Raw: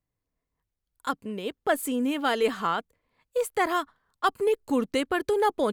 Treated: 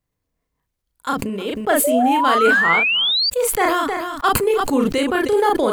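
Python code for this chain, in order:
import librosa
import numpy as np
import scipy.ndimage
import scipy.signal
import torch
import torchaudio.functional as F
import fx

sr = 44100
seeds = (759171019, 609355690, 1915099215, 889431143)

y = fx.doubler(x, sr, ms=36.0, db=-4.5)
y = y + 10.0 ** (-21.0 / 20.0) * np.pad(y, (int(313 * sr / 1000.0), 0))[:len(y)]
y = fx.spec_paint(y, sr, seeds[0], shape='rise', start_s=1.84, length_s=1.46, low_hz=560.0, high_hz=4800.0, level_db=-23.0)
y = fx.sustainer(y, sr, db_per_s=26.0)
y = y * 10.0 ** (5.0 / 20.0)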